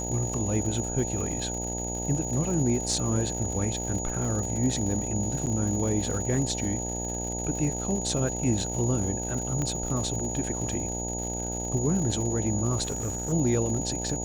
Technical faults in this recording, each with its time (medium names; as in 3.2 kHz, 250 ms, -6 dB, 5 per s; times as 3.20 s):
buzz 60 Hz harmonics 15 -34 dBFS
crackle 140 per s -34 dBFS
whine 6.8 kHz -33 dBFS
5.46–5.47 s: dropout 8 ms
9.62 s: pop -18 dBFS
12.83–13.33 s: clipped -26 dBFS